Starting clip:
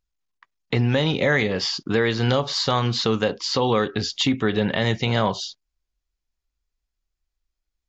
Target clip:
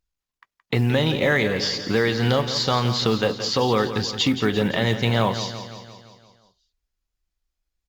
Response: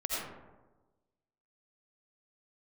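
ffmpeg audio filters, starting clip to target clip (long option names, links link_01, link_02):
-af "aecho=1:1:171|342|513|684|855|1026|1197:0.282|0.163|0.0948|0.055|0.0319|0.0185|0.0107,acrusher=bits=8:mode=log:mix=0:aa=0.000001" -ar 48000 -c:a libopus -b:a 64k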